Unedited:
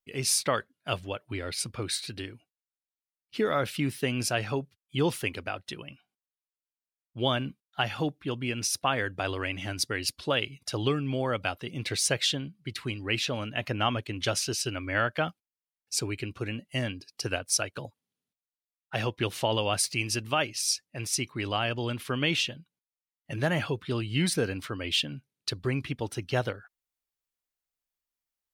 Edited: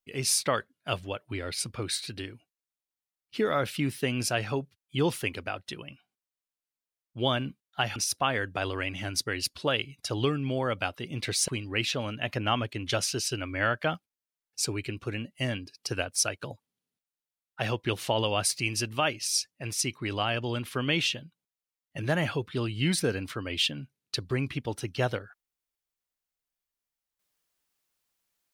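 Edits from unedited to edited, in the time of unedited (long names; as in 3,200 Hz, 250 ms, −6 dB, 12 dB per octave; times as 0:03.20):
0:07.96–0:08.59: remove
0:12.11–0:12.82: remove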